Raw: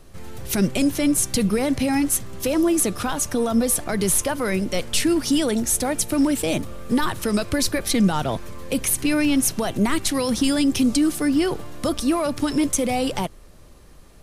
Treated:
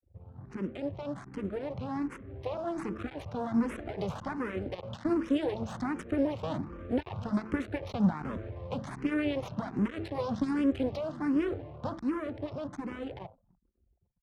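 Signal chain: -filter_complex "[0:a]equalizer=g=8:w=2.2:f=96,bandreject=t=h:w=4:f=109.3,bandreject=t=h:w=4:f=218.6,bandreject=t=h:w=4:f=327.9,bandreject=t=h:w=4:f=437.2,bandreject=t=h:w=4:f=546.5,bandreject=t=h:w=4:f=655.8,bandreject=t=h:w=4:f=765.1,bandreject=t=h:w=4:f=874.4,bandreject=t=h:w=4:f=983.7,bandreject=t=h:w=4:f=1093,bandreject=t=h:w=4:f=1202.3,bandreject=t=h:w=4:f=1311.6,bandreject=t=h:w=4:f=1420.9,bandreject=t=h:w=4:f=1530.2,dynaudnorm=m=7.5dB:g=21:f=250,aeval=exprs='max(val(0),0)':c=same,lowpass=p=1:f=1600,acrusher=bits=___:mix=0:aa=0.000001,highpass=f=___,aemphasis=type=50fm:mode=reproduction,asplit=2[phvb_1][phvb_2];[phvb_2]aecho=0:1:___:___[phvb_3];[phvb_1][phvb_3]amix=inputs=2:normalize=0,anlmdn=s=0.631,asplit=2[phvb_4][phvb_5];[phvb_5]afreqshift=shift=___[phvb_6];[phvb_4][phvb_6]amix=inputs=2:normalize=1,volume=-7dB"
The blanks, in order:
7, 63, 291, 0.0891, 1.3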